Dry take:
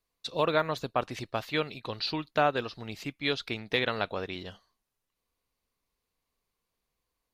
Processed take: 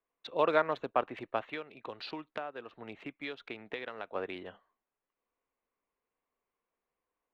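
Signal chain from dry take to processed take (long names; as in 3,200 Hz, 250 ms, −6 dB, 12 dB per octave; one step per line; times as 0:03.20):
adaptive Wiener filter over 9 samples
three-way crossover with the lows and the highs turned down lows −15 dB, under 250 Hz, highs −20 dB, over 3,300 Hz
0:01.53–0:04.15: downward compressor 5 to 1, threshold −38 dBFS, peak gain reduction 16.5 dB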